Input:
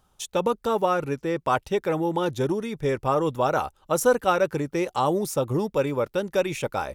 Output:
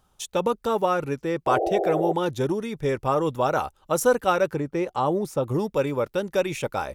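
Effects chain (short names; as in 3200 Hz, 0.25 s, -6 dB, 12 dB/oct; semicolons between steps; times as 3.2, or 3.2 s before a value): 1.46–2.13 painted sound noise 320–810 Hz -25 dBFS; 4.54–5.44 high shelf 3100 Hz -10.5 dB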